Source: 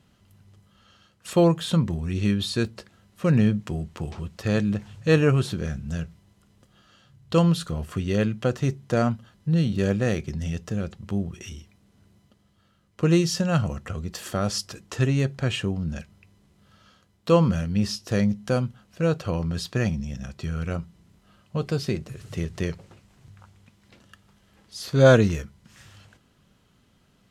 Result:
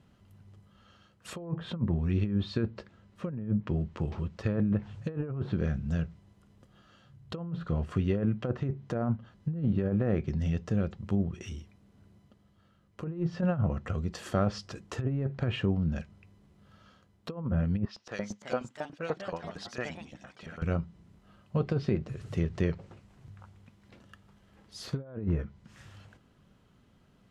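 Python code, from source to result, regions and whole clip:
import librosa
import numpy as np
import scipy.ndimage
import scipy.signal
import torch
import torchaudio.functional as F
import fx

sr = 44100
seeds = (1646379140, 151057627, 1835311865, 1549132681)

y = fx.chain(x, sr, fx.air_absorb(metres=53.0),
    fx.notch(hz=730.0, q=14.0), at=(2.44, 4.83))
y = fx.chain(y, sr, fx.filter_lfo_bandpass(shape='saw_up', hz=8.8, low_hz=660.0, high_hz=5700.0, q=0.93),
    fx.echo_pitch(ms=379, semitones=3, count=2, db_per_echo=-6.0), at=(17.85, 20.62))
y = fx.env_lowpass_down(y, sr, base_hz=1300.0, full_db=-18.0)
y = fx.high_shelf(y, sr, hz=2500.0, db=-9.0)
y = fx.over_compress(y, sr, threshold_db=-24.0, ratio=-0.5)
y = y * 10.0 ** (-3.5 / 20.0)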